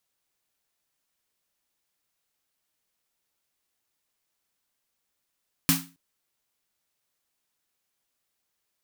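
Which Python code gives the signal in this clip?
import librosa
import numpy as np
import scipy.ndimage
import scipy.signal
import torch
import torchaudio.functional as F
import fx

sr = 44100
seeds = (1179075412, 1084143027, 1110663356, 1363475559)

y = fx.drum_snare(sr, seeds[0], length_s=0.27, hz=170.0, second_hz=270.0, noise_db=3, noise_from_hz=870.0, decay_s=0.34, noise_decay_s=0.29)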